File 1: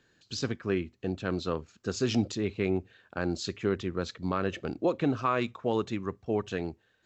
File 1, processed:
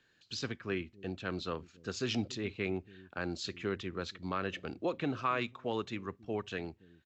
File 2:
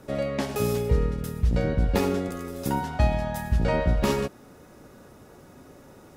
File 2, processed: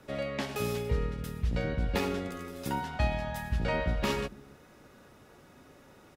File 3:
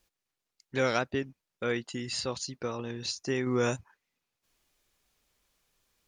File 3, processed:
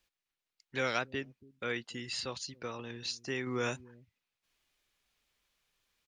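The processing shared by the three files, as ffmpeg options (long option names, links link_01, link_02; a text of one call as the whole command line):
ffmpeg -i in.wav -filter_complex "[0:a]acrossover=split=400|3500[link_01][link_02][link_03];[link_01]aecho=1:1:282:0.15[link_04];[link_02]crystalizer=i=6.5:c=0[link_05];[link_04][link_05][link_03]amix=inputs=3:normalize=0,volume=-7.5dB" out.wav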